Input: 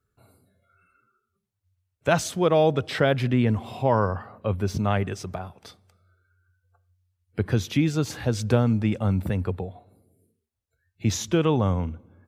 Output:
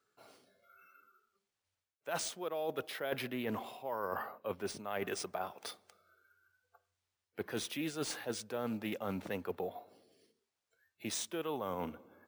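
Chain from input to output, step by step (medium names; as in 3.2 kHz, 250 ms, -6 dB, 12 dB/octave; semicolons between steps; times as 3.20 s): high-pass 400 Hz 12 dB/octave; reverse; compression 20:1, threshold -36 dBFS, peak gain reduction 20.5 dB; reverse; careless resampling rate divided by 3×, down none, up hold; loudspeaker Doppler distortion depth 0.12 ms; trim +2 dB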